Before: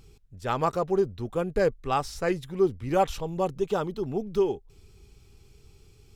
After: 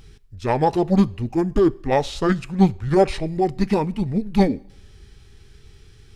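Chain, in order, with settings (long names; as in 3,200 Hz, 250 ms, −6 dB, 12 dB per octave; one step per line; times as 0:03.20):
formants moved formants −6 semitones
coupled-rooms reverb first 0.54 s, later 1.5 s, DRR 19 dB
level +7.5 dB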